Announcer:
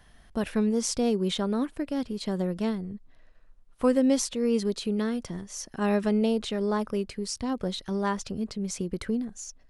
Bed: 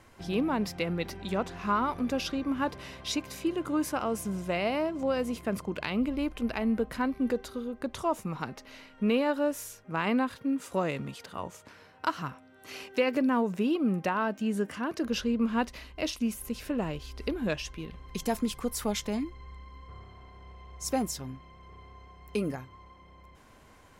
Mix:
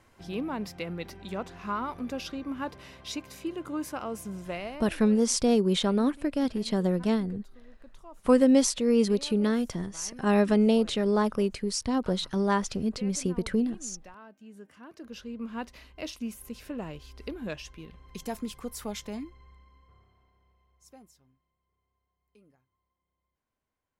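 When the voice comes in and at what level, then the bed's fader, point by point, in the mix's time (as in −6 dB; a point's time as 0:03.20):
4.45 s, +2.5 dB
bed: 0:04.52 −4.5 dB
0:05.12 −20.5 dB
0:14.38 −20.5 dB
0:15.81 −5.5 dB
0:19.20 −5.5 dB
0:21.62 −31 dB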